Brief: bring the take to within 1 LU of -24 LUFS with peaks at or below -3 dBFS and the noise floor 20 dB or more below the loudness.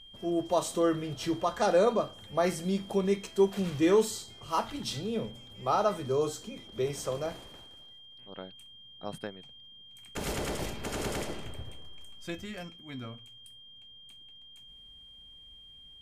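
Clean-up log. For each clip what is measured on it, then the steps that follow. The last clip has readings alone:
steady tone 3200 Hz; tone level -50 dBFS; loudness -31.0 LUFS; peak -13.0 dBFS; loudness target -24.0 LUFS
-> notch 3200 Hz, Q 30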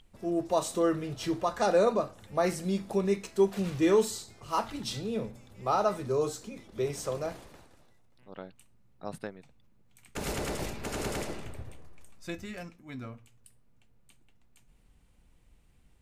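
steady tone none; loudness -31.0 LUFS; peak -13.0 dBFS; loudness target -24.0 LUFS
-> gain +7 dB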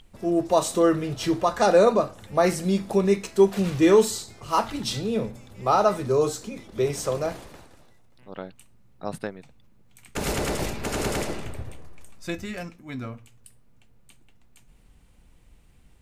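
loudness -24.0 LUFS; peak -6.0 dBFS; noise floor -55 dBFS

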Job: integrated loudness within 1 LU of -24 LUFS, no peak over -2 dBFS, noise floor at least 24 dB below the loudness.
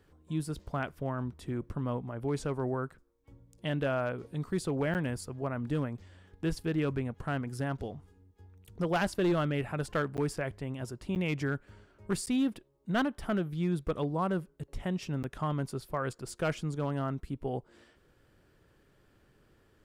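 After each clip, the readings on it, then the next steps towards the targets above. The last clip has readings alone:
clipped 0.6%; flat tops at -22.5 dBFS; dropouts 5; longest dropout 9.0 ms; loudness -34.0 LUFS; peak -22.5 dBFS; loudness target -24.0 LUFS
-> clip repair -22.5 dBFS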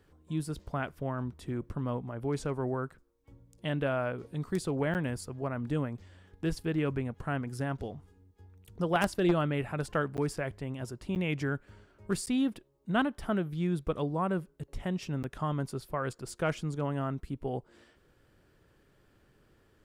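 clipped 0.0%; dropouts 5; longest dropout 9.0 ms
-> interpolate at 4.94/10.17/11.15/12.26/15.23, 9 ms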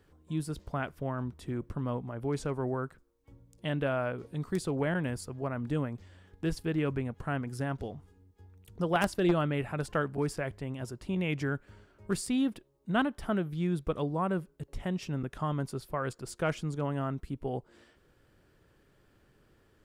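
dropouts 0; loudness -33.5 LUFS; peak -13.5 dBFS; loudness target -24.0 LUFS
-> gain +9.5 dB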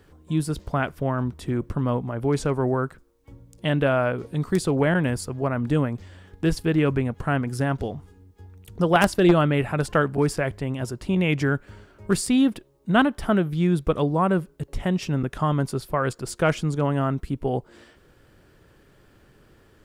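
loudness -24.0 LUFS; peak -4.0 dBFS; noise floor -57 dBFS

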